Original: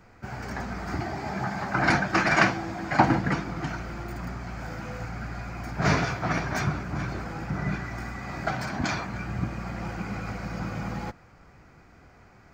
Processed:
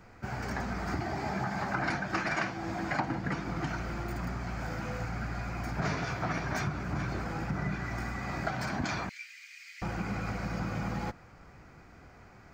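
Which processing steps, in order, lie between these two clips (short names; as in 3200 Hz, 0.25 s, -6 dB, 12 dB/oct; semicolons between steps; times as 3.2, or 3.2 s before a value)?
9.09–9.82 elliptic high-pass 2100 Hz, stop band 70 dB; compressor 6:1, threshold -29 dBFS, peak gain reduction 14.5 dB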